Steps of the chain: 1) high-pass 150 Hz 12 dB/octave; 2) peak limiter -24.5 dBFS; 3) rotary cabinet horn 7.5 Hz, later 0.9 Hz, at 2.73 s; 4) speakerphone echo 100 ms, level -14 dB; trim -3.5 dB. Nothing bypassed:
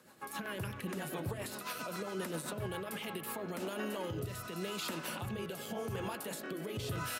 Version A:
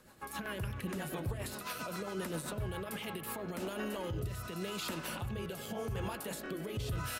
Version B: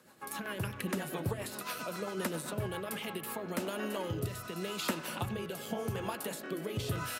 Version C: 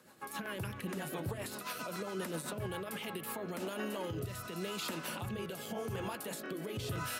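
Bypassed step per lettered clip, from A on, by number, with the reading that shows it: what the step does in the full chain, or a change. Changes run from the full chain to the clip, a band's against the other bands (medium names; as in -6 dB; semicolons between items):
1, 125 Hz band +3.0 dB; 2, mean gain reduction 2.0 dB; 4, echo-to-direct -19.5 dB to none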